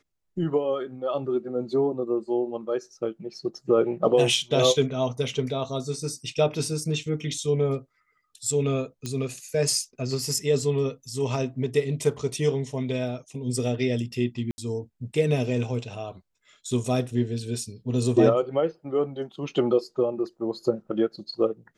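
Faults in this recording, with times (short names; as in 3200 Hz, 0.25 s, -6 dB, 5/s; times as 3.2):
9.06 pop -18 dBFS
14.51–14.58 gap 70 ms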